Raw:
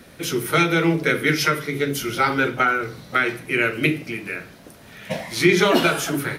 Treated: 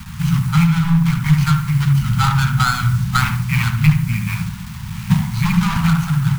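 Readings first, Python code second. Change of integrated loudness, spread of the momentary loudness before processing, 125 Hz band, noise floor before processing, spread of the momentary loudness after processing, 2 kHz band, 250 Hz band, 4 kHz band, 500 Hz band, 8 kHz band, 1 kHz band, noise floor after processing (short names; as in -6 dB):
+4.0 dB, 12 LU, +15.5 dB, -46 dBFS, 6 LU, -3.5 dB, +5.0 dB, -1.0 dB, under -25 dB, 0.0 dB, +1.0 dB, -30 dBFS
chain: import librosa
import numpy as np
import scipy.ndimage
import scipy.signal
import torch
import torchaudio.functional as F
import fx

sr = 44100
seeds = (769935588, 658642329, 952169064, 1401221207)

p1 = scipy.ndimage.median_filter(x, 25, mode='constant')
p2 = fx.fold_sine(p1, sr, drive_db=9, ceiling_db=-5.5)
p3 = p1 + F.gain(torch.from_numpy(p2), -4.0).numpy()
p4 = fx.bass_treble(p3, sr, bass_db=11, treble_db=0)
p5 = p4 + fx.echo_bbd(p4, sr, ms=72, stages=1024, feedback_pct=34, wet_db=-7, dry=0)
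p6 = fx.quant_dither(p5, sr, seeds[0], bits=6, dither='none')
p7 = fx.high_shelf(p6, sr, hz=11000.0, db=3.5)
p8 = fx.rider(p7, sr, range_db=4, speed_s=0.5)
p9 = scipy.signal.sosfilt(scipy.signal.cheby2(4, 40, [280.0, 620.0], 'bandstop', fs=sr, output='sos'), p8)
y = F.gain(torch.from_numpy(p9), -3.5).numpy()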